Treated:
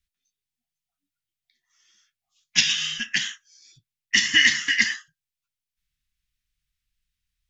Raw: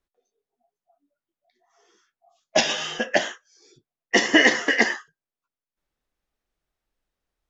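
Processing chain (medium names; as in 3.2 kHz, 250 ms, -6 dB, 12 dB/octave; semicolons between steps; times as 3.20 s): Chebyshev band-stop 120–2500 Hz, order 2; trim +4.5 dB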